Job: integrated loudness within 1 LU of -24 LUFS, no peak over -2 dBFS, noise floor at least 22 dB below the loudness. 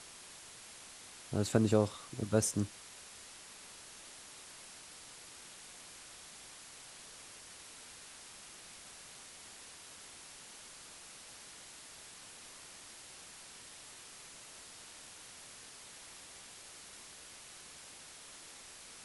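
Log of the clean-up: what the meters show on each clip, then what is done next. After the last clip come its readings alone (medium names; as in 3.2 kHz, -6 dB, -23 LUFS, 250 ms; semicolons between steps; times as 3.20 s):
noise floor -53 dBFS; noise floor target -65 dBFS; loudness -42.5 LUFS; peak level -13.5 dBFS; loudness target -24.0 LUFS
-> noise reduction 12 dB, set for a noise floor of -53 dBFS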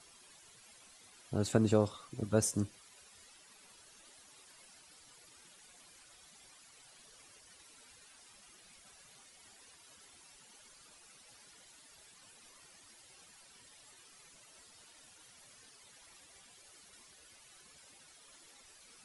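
noise floor -61 dBFS; loudness -33.0 LUFS; peak level -13.5 dBFS; loudness target -24.0 LUFS
-> trim +9 dB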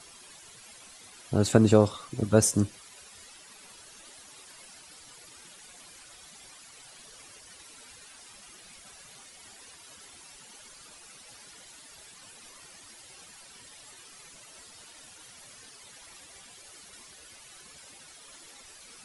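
loudness -24.0 LUFS; peak level -4.5 dBFS; noise floor -52 dBFS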